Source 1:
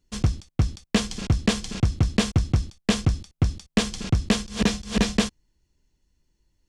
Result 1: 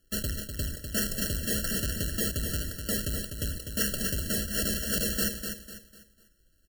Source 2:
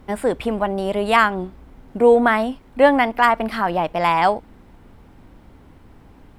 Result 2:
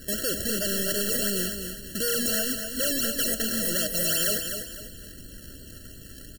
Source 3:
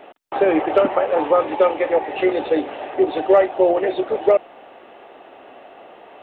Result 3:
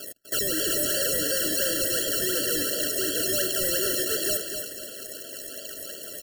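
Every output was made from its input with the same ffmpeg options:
-filter_complex "[0:a]equalizer=f=1.5k:t=o:w=1.3:g=-13,alimiter=limit=-14dB:level=0:latency=1,acrusher=samples=21:mix=1:aa=0.000001:lfo=1:lforange=21:lforate=2.8,volume=31.5dB,asoftclip=hard,volume=-31.5dB,crystalizer=i=9:c=0,acrusher=bits=3:mode=log:mix=0:aa=0.000001,asplit=2[a][b];[b]aecho=0:1:249|498|747|996:0.447|0.156|0.0547|0.0192[c];[a][c]amix=inputs=2:normalize=0,afftfilt=real='re*eq(mod(floor(b*sr/1024/660),2),0)':imag='im*eq(mod(floor(b*sr/1024/660),2),0)':win_size=1024:overlap=0.75"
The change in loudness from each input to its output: -4.5, -7.0, -5.0 LU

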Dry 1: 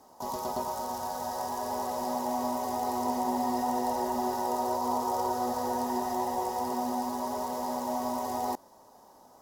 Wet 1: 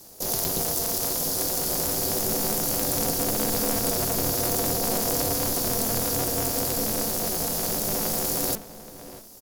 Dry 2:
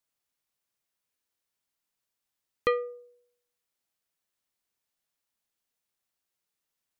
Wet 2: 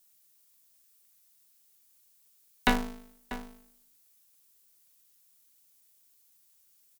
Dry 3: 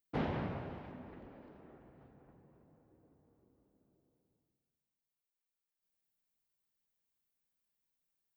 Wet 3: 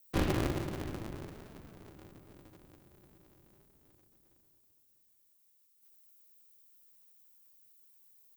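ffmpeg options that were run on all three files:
-filter_complex "[0:a]bass=f=250:g=10,treble=f=4k:g=2,asplit=2[a][b];[b]adelay=641.4,volume=-13dB,highshelf=f=4k:g=-14.4[c];[a][c]amix=inputs=2:normalize=0,afreqshift=-350,crystalizer=i=5.5:c=0,bandreject=f=50:t=h:w=6,bandreject=f=100:t=h:w=6,aeval=exprs='val(0)*sgn(sin(2*PI*110*n/s))':c=same"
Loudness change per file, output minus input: +7.5, -1.0, +5.0 LU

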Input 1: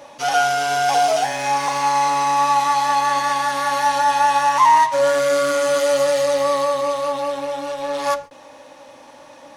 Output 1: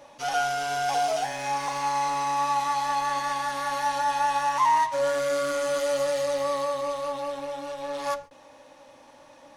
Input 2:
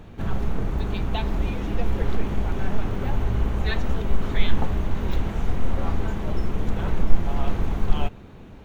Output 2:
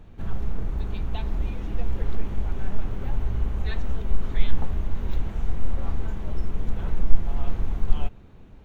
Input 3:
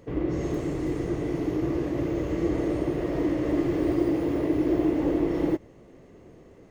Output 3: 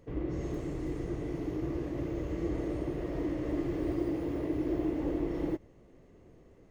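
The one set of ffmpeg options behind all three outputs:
-af "lowshelf=f=69:g=10,volume=-8.5dB"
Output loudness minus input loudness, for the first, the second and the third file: -8.5, -4.0, -7.5 LU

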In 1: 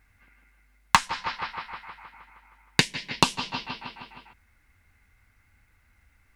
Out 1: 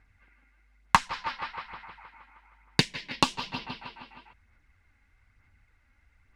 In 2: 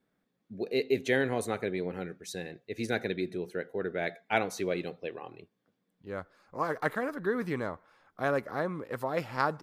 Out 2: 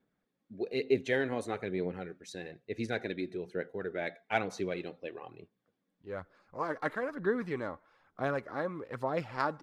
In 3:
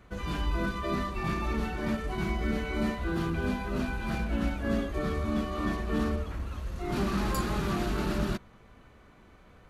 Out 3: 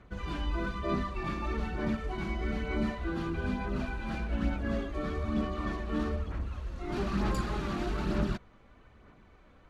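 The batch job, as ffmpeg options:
-af "aphaser=in_gain=1:out_gain=1:delay=3.7:decay=0.36:speed=1.1:type=sinusoidal,adynamicsmooth=sensitivity=2:basefreq=7.4k,volume=-3.5dB"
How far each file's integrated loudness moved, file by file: -2.5, -2.5, -2.5 LU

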